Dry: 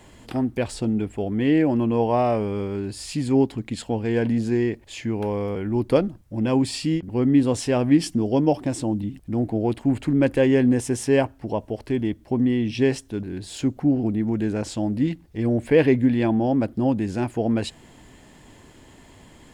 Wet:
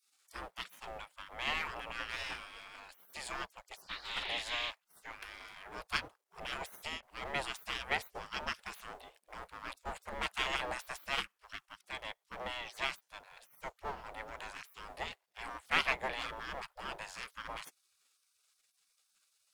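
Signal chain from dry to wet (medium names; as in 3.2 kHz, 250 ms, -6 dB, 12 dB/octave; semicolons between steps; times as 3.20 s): power-law waveshaper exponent 1.4; 3.76–4.69 s: band noise 1.9–3.7 kHz -41 dBFS; spectral gate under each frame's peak -25 dB weak; trim +4 dB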